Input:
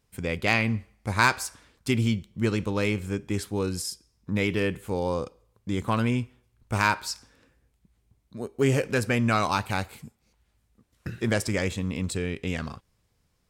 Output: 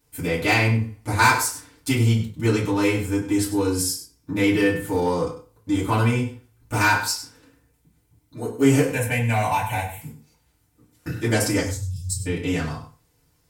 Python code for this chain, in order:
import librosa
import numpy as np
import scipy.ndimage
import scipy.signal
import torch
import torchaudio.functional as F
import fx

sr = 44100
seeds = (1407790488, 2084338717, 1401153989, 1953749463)

p1 = fx.fixed_phaser(x, sr, hz=1300.0, stages=6, at=(8.92, 10.01))
p2 = fx.ellip_bandstop(p1, sr, low_hz=120.0, high_hz=5100.0, order=3, stop_db=40, at=(11.6, 12.26))
p3 = fx.rev_fdn(p2, sr, rt60_s=0.35, lf_ratio=0.95, hf_ratio=0.65, size_ms=20.0, drr_db=-8.5)
p4 = 10.0 ** (-16.5 / 20.0) * np.tanh(p3 / 10.0 ** (-16.5 / 20.0))
p5 = p3 + F.gain(torch.from_numpy(p4), -6.5).numpy()
p6 = fx.high_shelf(p5, sr, hz=7700.0, db=11.5)
p7 = p6 + fx.echo_single(p6, sr, ms=98, db=-12.5, dry=0)
y = F.gain(torch.from_numpy(p7), -7.0).numpy()